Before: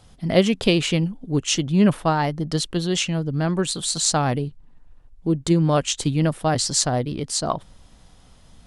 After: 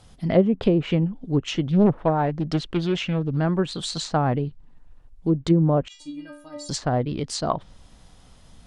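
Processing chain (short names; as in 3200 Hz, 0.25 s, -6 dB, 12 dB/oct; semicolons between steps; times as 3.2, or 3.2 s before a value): 5.88–6.69 metallic resonator 290 Hz, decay 0.55 s, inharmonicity 0.008; treble ducked by the level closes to 690 Hz, closed at -14 dBFS; 1.7–3.37 Doppler distortion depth 0.63 ms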